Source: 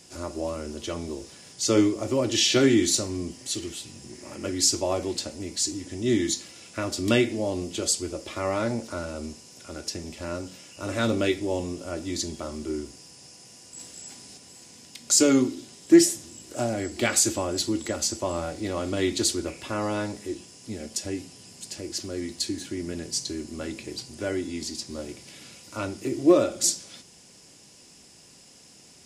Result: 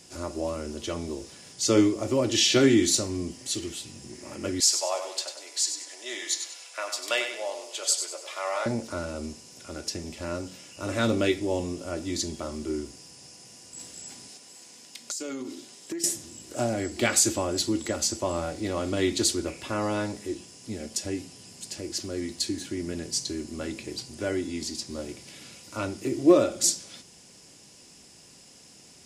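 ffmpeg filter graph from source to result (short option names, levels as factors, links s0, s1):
-filter_complex "[0:a]asettb=1/sr,asplit=3[s0][s1][s2];[s0]atrim=end=4.604[s3];[s1]atrim=start=4.6:end=8.66,asetpts=PTS-STARTPTS,afade=t=in:d=0.004:c=qsin,afade=t=out:st=4.056:d=0.004:c=qsin,highpass=f=600:w=0.5412,highpass=f=600:w=1.3066,aecho=1:1:97|194|291|388:0.398|0.151|0.0575|0.0218,atrim=end_sample=179046[s4];[s2]atrim=start=8.656[s5];[s3][s4]acrossfade=d=0.004:c1=hsin:c2=qsin[s6];[s6][s5]acrossfade=d=0.004:c1=qsin:c2=hsin,asettb=1/sr,asplit=3[s7][s8][s9];[s7]atrim=end=14.284[s10];[s8]atrim=start=14.28:end=16.04,asetpts=PTS-STARTPTS,afade=t=in:d=0.004:c=qsin,afade=t=out:st=1.756:d=0.004:c=qsin,equalizer=f=79:t=o:w=2.6:g=-14,acompressor=threshold=0.0316:ratio=16:attack=3.2:release=140:knee=1:detection=peak[s11];[s9]atrim=start=16.036[s12];[s10][s11]acrossfade=d=0.004:c1=hsin:c2=qsin[s13];[s13][s12]acrossfade=d=0.004:c1=qsin:c2=hsin"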